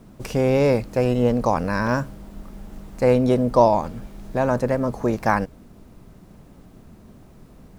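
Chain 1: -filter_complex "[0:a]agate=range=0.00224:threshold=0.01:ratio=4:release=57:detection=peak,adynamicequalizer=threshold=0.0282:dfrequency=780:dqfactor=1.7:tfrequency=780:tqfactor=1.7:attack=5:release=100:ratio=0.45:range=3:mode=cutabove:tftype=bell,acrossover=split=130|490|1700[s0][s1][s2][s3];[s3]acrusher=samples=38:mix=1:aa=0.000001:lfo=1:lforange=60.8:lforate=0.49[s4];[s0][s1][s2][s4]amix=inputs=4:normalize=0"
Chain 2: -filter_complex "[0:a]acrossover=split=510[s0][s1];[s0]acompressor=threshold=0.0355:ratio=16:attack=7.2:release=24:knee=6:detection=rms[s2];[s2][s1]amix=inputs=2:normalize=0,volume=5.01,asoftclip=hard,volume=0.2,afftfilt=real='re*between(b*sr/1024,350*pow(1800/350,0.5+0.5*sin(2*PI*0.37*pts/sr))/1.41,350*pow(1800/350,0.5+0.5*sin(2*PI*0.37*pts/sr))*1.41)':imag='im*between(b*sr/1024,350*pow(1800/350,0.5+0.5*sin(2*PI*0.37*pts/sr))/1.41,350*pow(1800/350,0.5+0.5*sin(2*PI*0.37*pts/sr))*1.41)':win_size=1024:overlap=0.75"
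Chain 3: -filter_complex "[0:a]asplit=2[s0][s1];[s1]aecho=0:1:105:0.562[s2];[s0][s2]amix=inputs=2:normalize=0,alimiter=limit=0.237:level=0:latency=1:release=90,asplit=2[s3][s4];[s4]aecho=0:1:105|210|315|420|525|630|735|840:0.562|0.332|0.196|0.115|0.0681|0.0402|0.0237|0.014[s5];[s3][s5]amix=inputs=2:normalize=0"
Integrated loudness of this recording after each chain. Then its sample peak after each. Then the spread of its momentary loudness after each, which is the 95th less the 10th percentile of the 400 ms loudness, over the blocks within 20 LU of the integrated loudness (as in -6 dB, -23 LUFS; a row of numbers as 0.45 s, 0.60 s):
-21.5 LUFS, -34.0 LUFS, -20.0 LUFS; -3.0 dBFS, -13.5 dBFS, -6.0 dBFS; 10 LU, 16 LU, 14 LU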